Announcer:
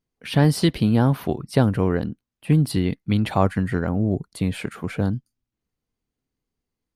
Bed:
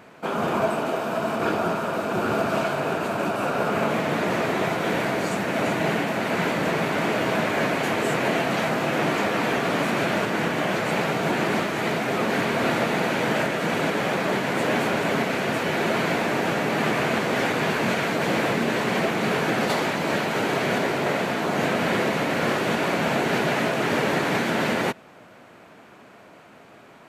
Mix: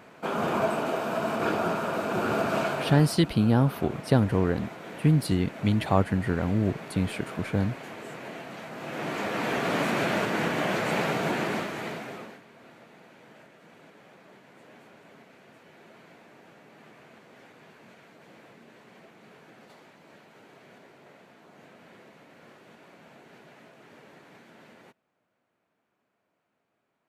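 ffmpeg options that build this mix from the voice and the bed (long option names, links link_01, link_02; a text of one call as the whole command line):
ffmpeg -i stem1.wav -i stem2.wav -filter_complex "[0:a]adelay=2550,volume=-3.5dB[link_01];[1:a]volume=11dB,afade=type=out:start_time=2.68:duration=0.51:silence=0.199526,afade=type=in:start_time=8.7:duration=1.06:silence=0.199526,afade=type=out:start_time=11.13:duration=1.27:silence=0.0473151[link_02];[link_01][link_02]amix=inputs=2:normalize=0" out.wav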